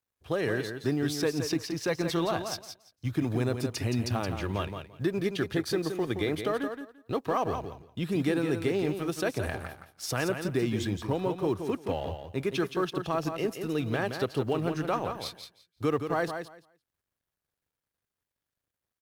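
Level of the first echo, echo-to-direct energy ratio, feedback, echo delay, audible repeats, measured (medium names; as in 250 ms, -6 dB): -7.5 dB, -7.5 dB, 17%, 171 ms, 2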